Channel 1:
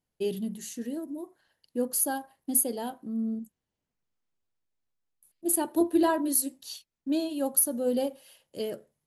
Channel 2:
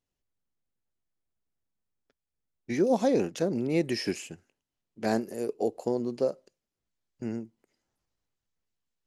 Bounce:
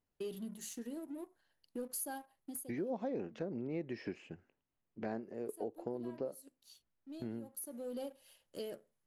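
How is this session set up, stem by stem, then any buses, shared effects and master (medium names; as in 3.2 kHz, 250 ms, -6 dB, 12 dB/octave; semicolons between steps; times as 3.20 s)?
-6.5 dB, 0.00 s, no send, high-pass 160 Hz 6 dB/octave; waveshaping leveller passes 1; saturation -15 dBFS, distortion -18 dB; auto duck -16 dB, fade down 0.35 s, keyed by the second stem
0.0 dB, 0.00 s, no send, low-pass 2.2 kHz 12 dB/octave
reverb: none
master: compression 2.5:1, threshold -43 dBFS, peak gain reduction 15 dB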